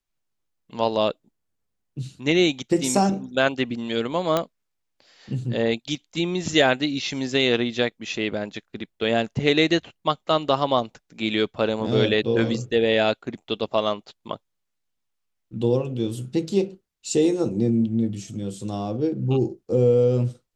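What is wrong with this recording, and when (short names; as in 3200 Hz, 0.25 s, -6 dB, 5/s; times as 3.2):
4.37 pop -8 dBFS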